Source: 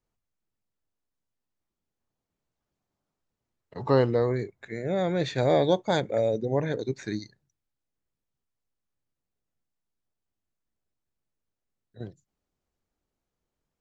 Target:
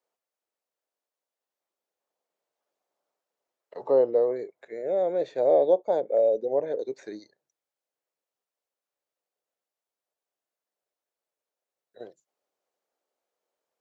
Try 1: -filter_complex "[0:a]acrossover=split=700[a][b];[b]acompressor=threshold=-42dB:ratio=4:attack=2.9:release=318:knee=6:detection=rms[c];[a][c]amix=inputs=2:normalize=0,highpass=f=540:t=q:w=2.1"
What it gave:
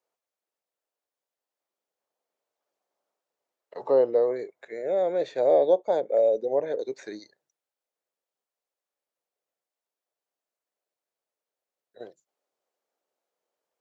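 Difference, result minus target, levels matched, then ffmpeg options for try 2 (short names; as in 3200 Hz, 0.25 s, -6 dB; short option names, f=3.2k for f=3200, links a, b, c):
compressor: peak gain reduction -5.5 dB
-filter_complex "[0:a]acrossover=split=700[a][b];[b]acompressor=threshold=-49dB:ratio=4:attack=2.9:release=318:knee=6:detection=rms[c];[a][c]amix=inputs=2:normalize=0,highpass=f=540:t=q:w=2.1"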